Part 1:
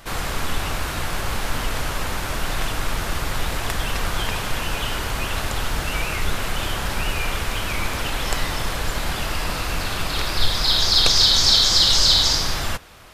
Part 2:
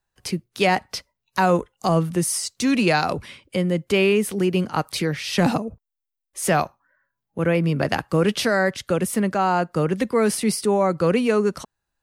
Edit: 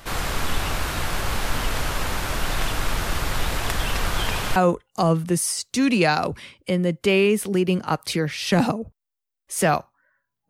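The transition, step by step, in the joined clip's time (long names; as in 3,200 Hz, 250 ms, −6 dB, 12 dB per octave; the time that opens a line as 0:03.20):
part 1
0:04.56: continue with part 2 from 0:01.42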